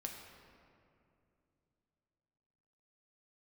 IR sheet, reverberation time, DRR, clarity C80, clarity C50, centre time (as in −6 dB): 2.7 s, 1.0 dB, 5.0 dB, 3.5 dB, 65 ms